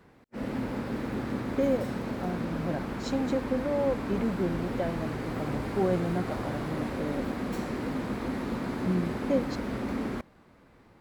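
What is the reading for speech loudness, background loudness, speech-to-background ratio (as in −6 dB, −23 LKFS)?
−32.5 LKFS, −33.5 LKFS, 1.0 dB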